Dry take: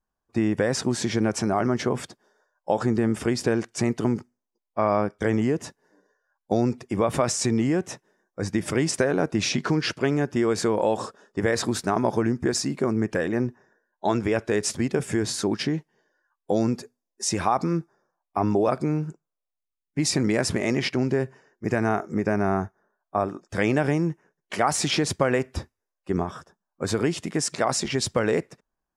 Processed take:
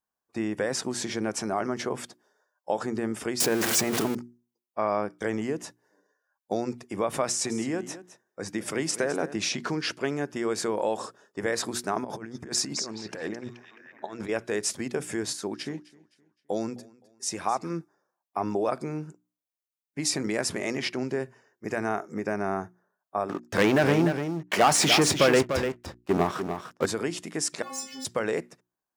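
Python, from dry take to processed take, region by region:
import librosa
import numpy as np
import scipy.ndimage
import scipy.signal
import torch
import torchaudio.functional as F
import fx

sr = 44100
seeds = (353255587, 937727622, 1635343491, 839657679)

y = fx.chain(x, sr, fx.zero_step(step_db=-27.0),
    fx.env_flatten(amount_pct=70), at=(3.4, 4.15))
y = fx.chain(y, sr, fx.highpass(hz=98.0, slope=12),
    fx.echo_single(ms=210, db=-14.0), at=(7.25, 9.36))
y = fx.chain(y, sr, fx.high_shelf(hz=7700.0, db=-4.5),
    fx.over_compress(threshold_db=-28.0, ratio=-0.5),
    fx.echo_stepped(ms=214, hz=5000.0, octaves=-0.7, feedback_pct=70, wet_db=-3.5), at=(12.04, 14.29))
y = fx.chain(y, sr, fx.echo_feedback(ms=259, feedback_pct=37, wet_db=-16.5),
    fx.upward_expand(threshold_db=-37.0, expansion=1.5), at=(15.33, 17.7))
y = fx.chain(y, sr, fx.lowpass(hz=3700.0, slope=6),
    fx.leveller(passes=3),
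    fx.echo_single(ms=296, db=-8.0), at=(23.29, 26.86))
y = fx.chain(y, sr, fx.leveller(passes=3),
    fx.stiff_resonator(f0_hz=260.0, decay_s=0.76, stiffness=0.008), at=(27.62, 28.05))
y = fx.highpass(y, sr, hz=270.0, slope=6)
y = fx.high_shelf(y, sr, hz=9800.0, db=7.5)
y = fx.hum_notches(y, sr, base_hz=60, count=6)
y = F.gain(torch.from_numpy(y), -3.5).numpy()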